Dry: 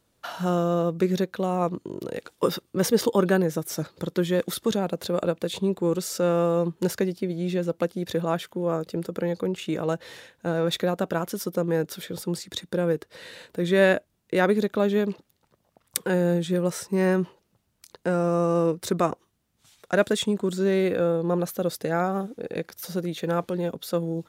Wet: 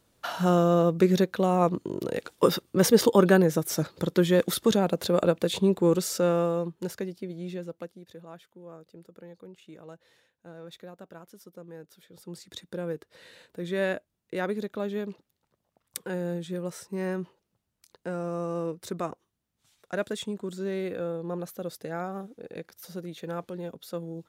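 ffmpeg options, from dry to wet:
ffmpeg -i in.wav -af "volume=13dB,afade=type=out:start_time=5.9:duration=0.84:silence=0.298538,afade=type=out:start_time=7.45:duration=0.61:silence=0.266073,afade=type=in:start_time=12.11:duration=0.4:silence=0.281838" out.wav

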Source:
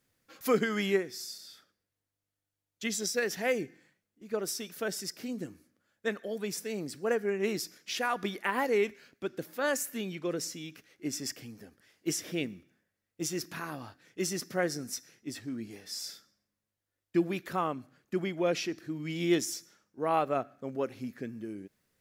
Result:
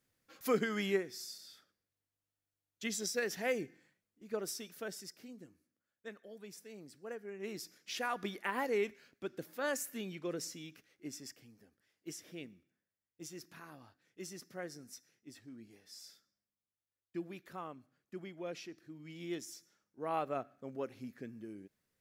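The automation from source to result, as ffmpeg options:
ffmpeg -i in.wav -af "volume=11dB,afade=type=out:start_time=4.31:duration=1.07:silence=0.298538,afade=type=in:start_time=7.3:duration=0.66:silence=0.334965,afade=type=out:start_time=10.6:duration=0.76:silence=0.398107,afade=type=in:start_time=19.43:duration=0.81:silence=0.473151" out.wav

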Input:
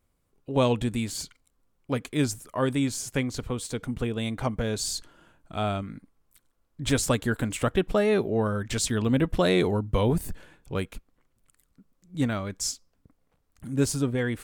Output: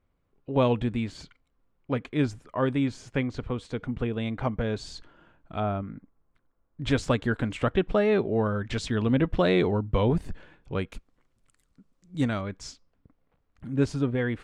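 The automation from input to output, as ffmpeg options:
ffmpeg -i in.wav -af "asetnsamples=nb_out_samples=441:pad=0,asendcmd='5.6 lowpass f 1500;6.82 lowpass f 3500;10.92 lowpass f 7500;12.41 lowpass f 3100',lowpass=2800" out.wav

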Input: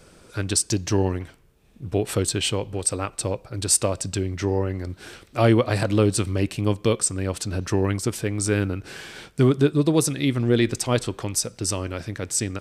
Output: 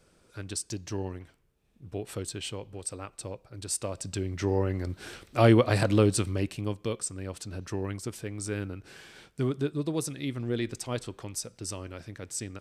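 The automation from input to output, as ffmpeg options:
ffmpeg -i in.wav -af "volume=-2dB,afade=type=in:start_time=3.78:duration=0.99:silence=0.298538,afade=type=out:start_time=5.87:duration=0.89:silence=0.354813" out.wav

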